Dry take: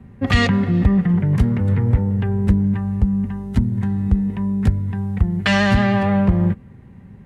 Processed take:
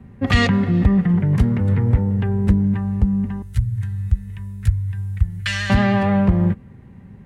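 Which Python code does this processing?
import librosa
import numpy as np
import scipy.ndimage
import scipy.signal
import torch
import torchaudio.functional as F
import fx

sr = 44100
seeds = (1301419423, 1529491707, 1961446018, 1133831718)

y = fx.curve_eq(x, sr, hz=(120.0, 250.0, 470.0, 770.0, 1500.0, 5200.0, 9300.0), db=(0, -28, -19, -22, -5, -1, 5), at=(3.42, 5.7))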